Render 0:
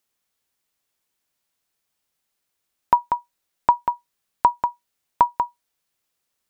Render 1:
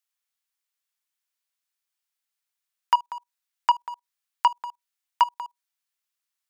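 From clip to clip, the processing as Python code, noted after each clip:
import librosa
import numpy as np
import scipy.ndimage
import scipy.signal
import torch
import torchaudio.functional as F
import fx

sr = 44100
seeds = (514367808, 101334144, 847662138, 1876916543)

y = scipy.signal.sosfilt(scipy.signal.butter(2, 1100.0, 'highpass', fs=sr, output='sos'), x)
y = fx.level_steps(y, sr, step_db=21)
y = fx.leveller(y, sr, passes=2)
y = y * 10.0 ** (2.5 / 20.0)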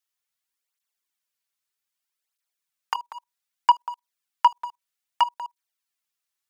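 y = fx.flanger_cancel(x, sr, hz=0.63, depth_ms=4.4)
y = y * 10.0 ** (3.5 / 20.0)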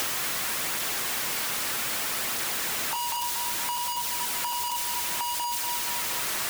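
y = np.sign(x) * np.sqrt(np.mean(np.square(x)))
y = fx.echo_feedback(y, sr, ms=236, feedback_pct=48, wet_db=-6.0)
y = fx.band_squash(y, sr, depth_pct=100)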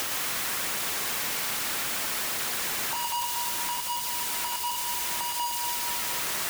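y = x + 10.0 ** (-4.0 / 20.0) * np.pad(x, (int(115 * sr / 1000.0), 0))[:len(x)]
y = y * 10.0 ** (-2.0 / 20.0)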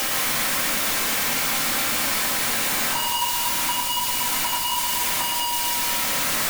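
y = fx.room_shoebox(x, sr, seeds[0], volume_m3=310.0, walls='furnished', distance_m=2.1)
y = y * 10.0 ** (4.0 / 20.0)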